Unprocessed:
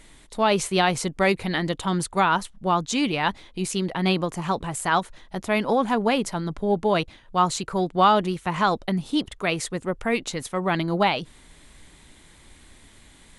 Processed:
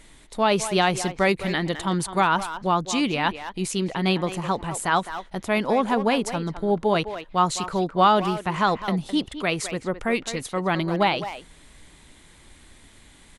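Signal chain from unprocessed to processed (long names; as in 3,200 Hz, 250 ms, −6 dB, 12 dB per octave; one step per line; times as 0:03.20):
far-end echo of a speakerphone 210 ms, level −10 dB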